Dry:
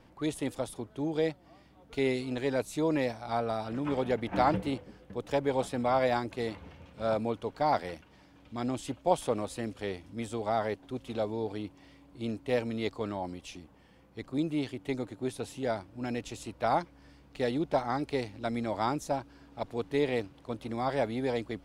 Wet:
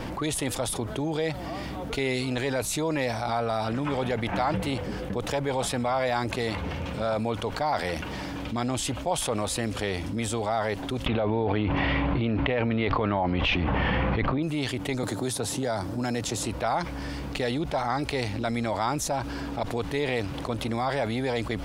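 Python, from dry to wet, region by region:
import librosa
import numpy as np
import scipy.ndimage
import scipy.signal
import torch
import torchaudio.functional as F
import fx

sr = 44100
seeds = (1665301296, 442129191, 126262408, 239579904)

y = fx.chain(x, sr, fx.lowpass(hz=2900.0, slope=24),
    fx.env_flatten(amount_pct=100), at=(11.06, 14.43))
y = fx.chain(y, sr, fx.highpass(hz=83.0, slope=12),
    fx.peak_eq(hz=2600.0, db=-9.0, octaves=0.81),
    fx.band_squash(depth_pct=70), at=(15.03, 16.46))
y = fx.dynamic_eq(y, sr, hz=320.0, q=0.79, threshold_db=-41.0, ratio=4.0, max_db=-7)
y = fx.env_flatten(y, sr, amount_pct=70)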